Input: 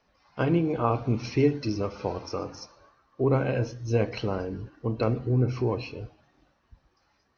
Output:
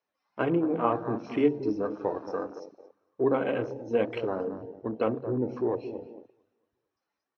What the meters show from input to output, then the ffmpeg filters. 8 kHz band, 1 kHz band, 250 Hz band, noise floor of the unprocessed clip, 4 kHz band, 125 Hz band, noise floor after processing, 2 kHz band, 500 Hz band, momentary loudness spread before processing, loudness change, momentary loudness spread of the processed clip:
n/a, 0.0 dB, -1.0 dB, -70 dBFS, -7.5 dB, -12.5 dB, under -85 dBFS, -1.5 dB, +0.5 dB, 15 LU, -2.0 dB, 14 LU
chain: -filter_complex "[0:a]asplit=2[a][b];[b]adelay=226,lowpass=f=1.6k:p=1,volume=-10.5dB,asplit=2[c][d];[d]adelay=226,lowpass=f=1.6k:p=1,volume=0.44,asplit=2[e][f];[f]adelay=226,lowpass=f=1.6k:p=1,volume=0.44,asplit=2[g][h];[h]adelay=226,lowpass=f=1.6k:p=1,volume=0.44,asplit=2[i][j];[j]adelay=226,lowpass=f=1.6k:p=1,volume=0.44[k];[a][c][e][g][i][k]amix=inputs=6:normalize=0,flanger=delay=1.8:depth=2.7:regen=-49:speed=1.9:shape=triangular,highpass=230,bandreject=f=4.6k:w=8.4,afwtdn=0.00794,volume=4dB"

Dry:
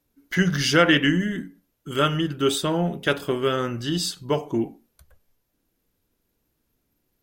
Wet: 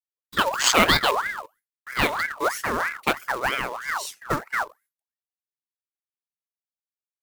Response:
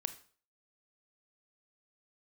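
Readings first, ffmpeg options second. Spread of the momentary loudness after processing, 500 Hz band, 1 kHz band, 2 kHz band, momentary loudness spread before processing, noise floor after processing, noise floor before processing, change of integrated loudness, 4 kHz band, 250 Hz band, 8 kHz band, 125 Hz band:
12 LU, -4.5 dB, +5.0 dB, +2.0 dB, 11 LU, under -85 dBFS, -74 dBFS, -0.5 dB, +0.5 dB, -10.0 dB, +4.0 dB, -11.0 dB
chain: -af "afwtdn=0.0562,agate=range=-33dB:threshold=-49dB:ratio=3:detection=peak,crystalizer=i=4.5:c=0,acrusher=bits=3:mode=log:mix=0:aa=0.000001,aeval=exprs='val(0)*sin(2*PI*1300*n/s+1300*0.45/3.1*sin(2*PI*3.1*n/s))':c=same"

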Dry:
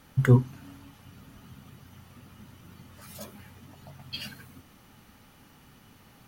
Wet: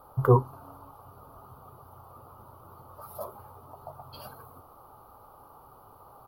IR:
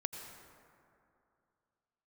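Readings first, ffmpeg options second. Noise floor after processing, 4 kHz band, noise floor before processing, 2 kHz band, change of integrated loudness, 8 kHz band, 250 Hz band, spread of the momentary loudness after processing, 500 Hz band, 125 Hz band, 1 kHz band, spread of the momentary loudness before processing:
-54 dBFS, -14.0 dB, -57 dBFS, -8.5 dB, -1.0 dB, -7.0 dB, -5.0 dB, 23 LU, +5.0 dB, -3.5 dB, +10.0 dB, 22 LU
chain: -af "firequalizer=gain_entry='entry(110,0);entry(200,-12);entry(400,7);entry(720,12);entry(1200,13);entry(1800,-21);entry(4500,-9);entry(7300,-24);entry(11000,3)':delay=0.05:min_phase=1,volume=-1.5dB"

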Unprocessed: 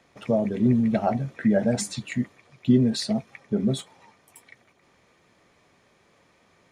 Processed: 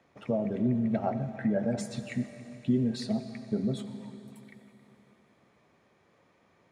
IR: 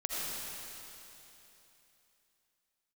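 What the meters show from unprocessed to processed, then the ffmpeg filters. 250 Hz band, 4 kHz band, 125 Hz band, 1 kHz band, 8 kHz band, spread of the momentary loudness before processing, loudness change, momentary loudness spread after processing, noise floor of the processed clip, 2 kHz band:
-6.5 dB, -10.5 dB, -6.5 dB, -6.5 dB, -12.5 dB, 10 LU, -6.5 dB, 13 LU, -67 dBFS, -7.5 dB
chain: -filter_complex "[0:a]highpass=60,highshelf=f=2.8k:g=-9.5,acompressor=threshold=-26dB:ratio=1.5,asplit=2[a][b];[1:a]atrim=start_sample=2205[c];[b][c]afir=irnorm=-1:irlink=0,volume=-13dB[d];[a][d]amix=inputs=2:normalize=0,volume=-5dB"

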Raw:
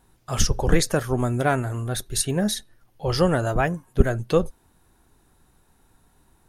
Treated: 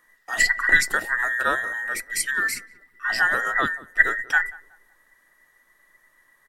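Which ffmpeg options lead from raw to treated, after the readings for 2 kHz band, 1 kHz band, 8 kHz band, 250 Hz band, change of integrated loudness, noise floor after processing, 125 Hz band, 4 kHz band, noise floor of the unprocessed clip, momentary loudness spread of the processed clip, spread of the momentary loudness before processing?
+14.0 dB, +1.0 dB, -2.0 dB, -15.5 dB, +2.0 dB, -63 dBFS, -24.5 dB, -2.0 dB, -62 dBFS, 10 LU, 7 LU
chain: -filter_complex "[0:a]afftfilt=real='real(if(between(b,1,1012),(2*floor((b-1)/92)+1)*92-b,b),0)':imag='imag(if(between(b,1,1012),(2*floor((b-1)/92)+1)*92-b,b),0)*if(between(b,1,1012),-1,1)':win_size=2048:overlap=0.75,asplit=2[a][b];[b]adelay=185,lowpass=f=840:p=1,volume=-17dB,asplit=2[c][d];[d]adelay=185,lowpass=f=840:p=1,volume=0.47,asplit=2[e][f];[f]adelay=185,lowpass=f=840:p=1,volume=0.47,asplit=2[g][h];[h]adelay=185,lowpass=f=840:p=1,volume=0.47[i];[c][e][g][i]amix=inputs=4:normalize=0[j];[a][j]amix=inputs=2:normalize=0,volume=-1.5dB"

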